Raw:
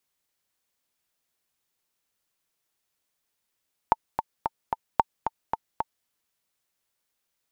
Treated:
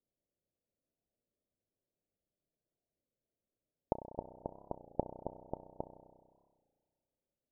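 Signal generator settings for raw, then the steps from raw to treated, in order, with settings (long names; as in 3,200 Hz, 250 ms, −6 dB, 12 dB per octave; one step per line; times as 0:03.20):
click track 223 BPM, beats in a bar 4, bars 2, 897 Hz, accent 7.5 dB −4.5 dBFS
elliptic low-pass filter 620 Hz, stop band 80 dB
spring reverb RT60 1.7 s, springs 32 ms, chirp 50 ms, DRR 9.5 dB
wow of a warped record 33 1/3 rpm, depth 160 cents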